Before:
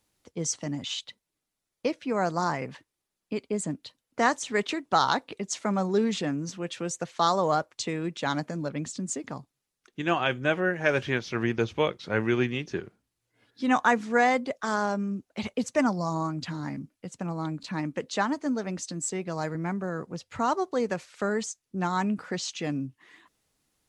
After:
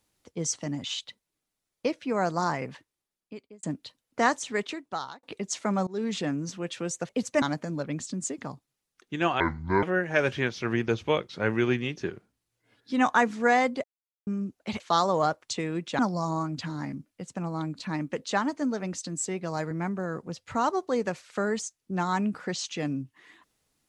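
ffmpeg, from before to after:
-filter_complex "[0:a]asplit=12[s0][s1][s2][s3][s4][s5][s6][s7][s8][s9][s10][s11];[s0]atrim=end=3.63,asetpts=PTS-STARTPTS,afade=t=out:st=2.68:d=0.95[s12];[s1]atrim=start=3.63:end=5.23,asetpts=PTS-STARTPTS,afade=t=in:d=0.004:c=hsin,afade=t=out:st=0.71:d=0.89[s13];[s2]atrim=start=5.23:end=5.87,asetpts=PTS-STARTPTS,afade=t=in:d=0.004:c=hsin,afade=t=out:st=0.636:d=0.004:c=hsin:silence=0.0707946[s14];[s3]atrim=start=5.87:end=7.092,asetpts=PTS-STARTPTS,afade=t=in:d=0.45:c=qsin:silence=0.0707946[s15];[s4]atrim=start=15.498:end=15.832[s16];[s5]atrim=start=8.278:end=10.264[s17];[s6]atrim=start=10.26:end=10.53,asetpts=PTS-STARTPTS,asetrate=27783,aresample=44100[s18];[s7]atrim=start=10.526:end=14.54,asetpts=PTS-STARTPTS,afade=t=out:st=4.01:d=0.004:c=hsin[s19];[s8]atrim=start=14.54:end=14.97,asetpts=PTS-STARTPTS,volume=0[s20];[s9]atrim=start=14.97:end=15.502,asetpts=PTS-STARTPTS,afade=t=in:d=0.004:c=hsin[s21];[s10]atrim=start=7.088:end=8.282[s22];[s11]atrim=start=15.828[s23];[s12][s13][s14][s15]concat=n=4:v=0:a=1[s24];[s24][s16]acrossfade=d=0.004:c1=hsin:c2=hsin[s25];[s25][s17]acrossfade=d=0.004:c1=hsin:c2=hsin[s26];[s26][s18]acrossfade=d=0.004:c1=hsin:c2=hsin[s27];[s19][s20][s21]concat=n=3:v=0:a=1[s28];[s27][s28]acrossfade=d=0.004:c1=hsin:c2=hsin[s29];[s29][s22]acrossfade=d=0.004:c1=hsin:c2=hsin[s30];[s30][s23]acrossfade=d=0.004:c1=hsin:c2=hsin"

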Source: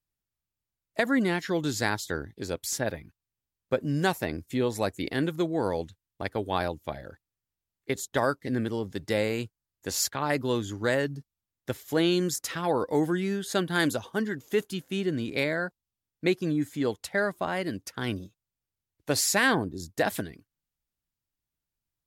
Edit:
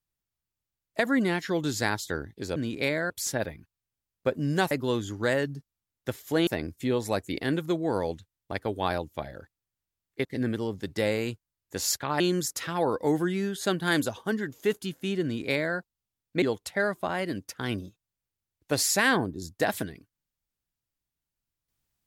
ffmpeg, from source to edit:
-filter_complex "[0:a]asplit=8[s0][s1][s2][s3][s4][s5][s6][s7];[s0]atrim=end=2.562[s8];[s1]atrim=start=15.108:end=15.652[s9];[s2]atrim=start=2.558:end=4.172[s10];[s3]atrim=start=10.318:end=12.082[s11];[s4]atrim=start=4.168:end=7.952[s12];[s5]atrim=start=8.368:end=10.322[s13];[s6]atrim=start=12.078:end=16.302[s14];[s7]atrim=start=16.798[s15];[s8][s9]acrossfade=d=0.004:c1=hsin:c2=hsin[s16];[s16][s10]acrossfade=d=0.004:c1=hsin:c2=hsin[s17];[s17][s11]acrossfade=d=0.004:c1=hsin:c2=hsin[s18];[s18][s12]acrossfade=d=0.004:c1=hsin:c2=hsin[s19];[s19][s13]acrossfade=d=0.004:c1=hsin:c2=hsin[s20];[s20][s14]acrossfade=d=0.004:c1=hsin:c2=hsin[s21];[s21][s15]acrossfade=d=0.004:c1=hsin:c2=hsin"

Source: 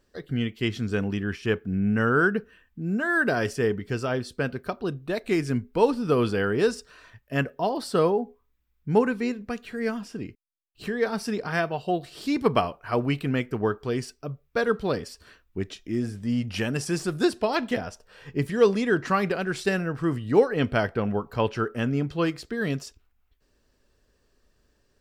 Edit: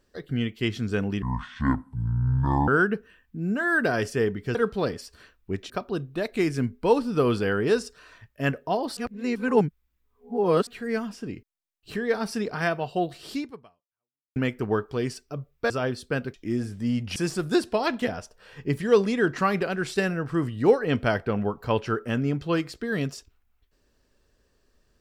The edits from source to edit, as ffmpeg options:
-filter_complex "[0:a]asplit=11[s0][s1][s2][s3][s4][s5][s6][s7][s8][s9][s10];[s0]atrim=end=1.224[s11];[s1]atrim=start=1.22:end=2.11,asetpts=PTS-STARTPTS,asetrate=26901,aresample=44100[s12];[s2]atrim=start=2.106:end=3.982[s13];[s3]atrim=start=14.618:end=15.772[s14];[s4]atrim=start=4.618:end=7.892[s15];[s5]atrim=start=7.888:end=9.592,asetpts=PTS-STARTPTS,areverse[s16];[s6]atrim=start=9.588:end=13.28,asetpts=PTS-STARTPTS,afade=t=out:st=2.672:d=1.02:c=exp[s17];[s7]atrim=start=13.28:end=14.622,asetpts=PTS-STARTPTS,afade=t=in:d=0.004:c=hsin[s18];[s8]atrim=start=3.978:end=4.622[s19];[s9]atrim=start=15.768:end=16.592[s20];[s10]atrim=start=16.848[s21];[s11][s12]acrossfade=d=0.004:c1=hsin:c2=hsin[s22];[s22][s13]acrossfade=d=0.004:c1=hsin:c2=hsin[s23];[s23][s14]acrossfade=d=0.004:c1=hsin:c2=hsin[s24];[s24][s15]acrossfade=d=0.004:c1=hsin:c2=hsin[s25];[s25][s16]acrossfade=d=0.004:c1=hsin:c2=hsin[s26];[s17][s18]concat=n=2:v=0:a=1[s27];[s26][s27]acrossfade=d=0.004:c1=hsin:c2=hsin[s28];[s28][s19]acrossfade=d=0.004:c1=hsin:c2=hsin[s29];[s29][s20]acrossfade=d=0.004:c1=hsin:c2=hsin[s30];[s30][s21]acrossfade=d=0.004:c1=hsin:c2=hsin"

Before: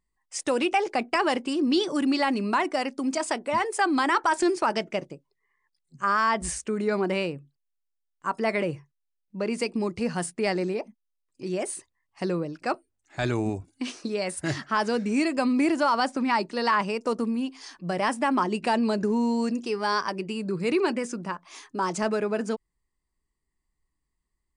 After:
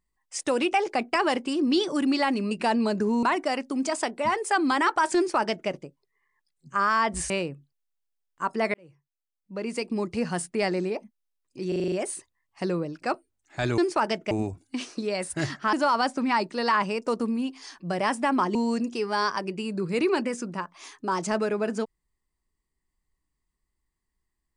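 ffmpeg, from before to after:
-filter_complex "[0:a]asplit=15[s0][s1][s2][s3][s4][s5][s6][s7][s8][s9][s10][s11][s12][s13][s14];[s0]atrim=end=2.512[s15];[s1]atrim=start=18.538:end=19.262[s16];[s2]atrim=start=2.508:end=6.582[s17];[s3]atrim=start=7.138:end=8.58,asetpts=PTS-STARTPTS,afade=t=out:st=1.438:d=0.004:c=hsin[s18];[s4]atrim=start=8.58:end=11.562,asetpts=PTS-STARTPTS,afade=t=in:d=1.36[s19];[s5]atrim=start=11.518:end=11.562[s20];[s6]atrim=start=11.518:end=11.562[s21];[s7]atrim=start=11.518:end=11.562[s22];[s8]atrim=start=11.518:end=11.562[s23];[s9]atrim=start=11.518:end=11.562[s24];[s10]atrim=start=11.518:end=13.382[s25];[s11]atrim=start=4.438:end=4.972[s26];[s12]atrim=start=13.378:end=14.802[s27];[s13]atrim=start=15.718:end=18.542[s28];[s14]atrim=start=19.258[s29];[s15][s16]acrossfade=d=0.004:c1=hsin:c2=hsin[s30];[s30][s17]acrossfade=d=0.004:c1=hsin:c2=hsin[s31];[s18][s19]concat=n=2:v=0:a=1[s32];[s31][s32]acrossfade=d=0.004:c1=hsin:c2=hsin[s33];[s33][s20]acrossfade=d=0.004:c1=hsin:c2=hsin[s34];[s34][s21]acrossfade=d=0.004:c1=hsin:c2=hsin[s35];[s35][s22]acrossfade=d=0.004:c1=hsin:c2=hsin[s36];[s36][s23]acrossfade=d=0.004:c1=hsin:c2=hsin[s37];[s37][s24]acrossfade=d=0.004:c1=hsin:c2=hsin[s38];[s38][s25]acrossfade=d=0.004:c1=hsin:c2=hsin[s39];[s39][s26]acrossfade=d=0.004:c1=hsin:c2=hsin[s40];[s40][s27]acrossfade=d=0.004:c1=hsin:c2=hsin[s41];[s41][s28]acrossfade=d=0.004:c1=hsin:c2=hsin[s42];[s42][s29]acrossfade=d=0.004:c1=hsin:c2=hsin"

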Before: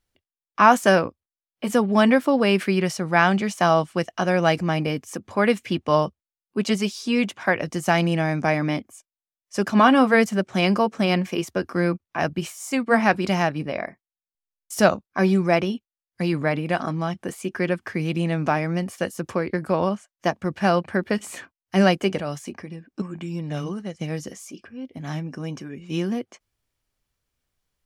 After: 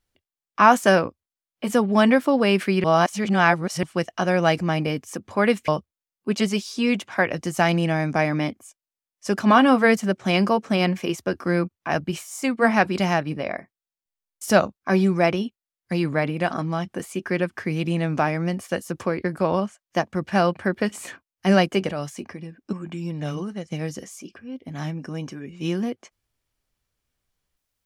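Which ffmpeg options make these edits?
-filter_complex "[0:a]asplit=4[s0][s1][s2][s3];[s0]atrim=end=2.842[s4];[s1]atrim=start=2.838:end=3.832,asetpts=PTS-STARTPTS,areverse[s5];[s2]atrim=start=3.828:end=5.682[s6];[s3]atrim=start=5.968[s7];[s4][s5]acrossfade=d=0.004:c1=hsin:c2=hsin[s8];[s8][s6]acrossfade=d=0.004:c1=hsin:c2=hsin[s9];[s9][s7]acrossfade=d=0.004:c1=hsin:c2=hsin"

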